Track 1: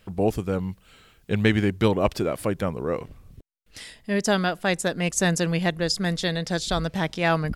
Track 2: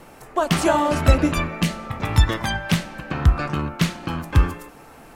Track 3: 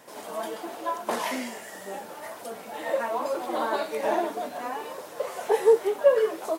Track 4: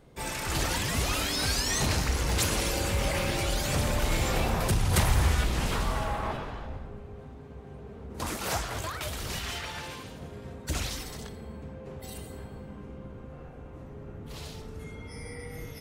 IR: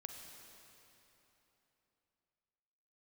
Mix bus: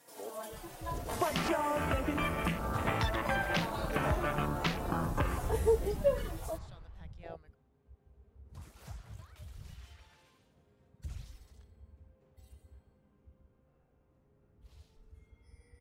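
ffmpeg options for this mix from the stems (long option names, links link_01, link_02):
-filter_complex "[0:a]highpass=frequency=440:poles=1,volume=-16.5dB[link_01];[1:a]lowshelf=frequency=320:gain=-6,bandreject=frequency=60:width_type=h:width=6,bandreject=frequency=120:width_type=h:width=6,bandreject=frequency=180:width_type=h:width=6,bandreject=frequency=240:width_type=h:width=6,bandreject=frequency=300:width_type=h:width=6,alimiter=limit=-12dB:level=0:latency=1:release=444,adelay=850,volume=1.5dB[link_02];[2:a]aemphasis=mode=production:type=cd,asplit=2[link_03][link_04];[link_04]adelay=3.7,afreqshift=-1.1[link_05];[link_03][link_05]amix=inputs=2:normalize=1,volume=-9dB[link_06];[3:a]adelay=350,volume=-9dB[link_07];[link_01][link_02][link_07]amix=inputs=3:normalize=0,afwtdn=0.0251,acompressor=threshold=-29dB:ratio=6,volume=0dB[link_08];[link_06][link_08]amix=inputs=2:normalize=0"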